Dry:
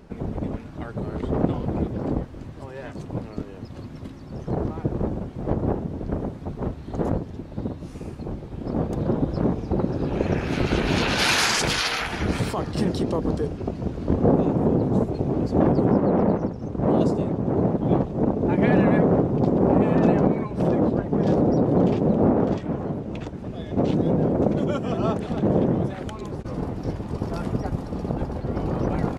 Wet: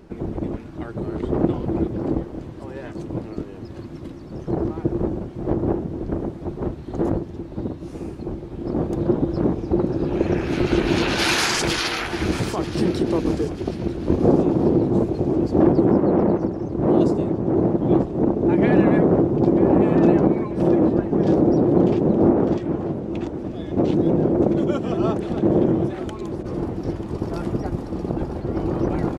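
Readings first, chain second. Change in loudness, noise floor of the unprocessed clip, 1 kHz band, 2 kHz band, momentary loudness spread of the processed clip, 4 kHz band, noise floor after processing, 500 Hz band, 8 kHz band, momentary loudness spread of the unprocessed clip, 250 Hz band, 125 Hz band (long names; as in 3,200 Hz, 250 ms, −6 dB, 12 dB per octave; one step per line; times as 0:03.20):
+2.5 dB, −39 dBFS, +0.5 dB, 0.0 dB, 14 LU, 0.0 dB, −37 dBFS, +3.0 dB, 0.0 dB, 14 LU, +3.5 dB, 0.0 dB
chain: parametric band 340 Hz +10 dB 0.27 octaves
on a send: repeating echo 938 ms, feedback 43%, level −16 dB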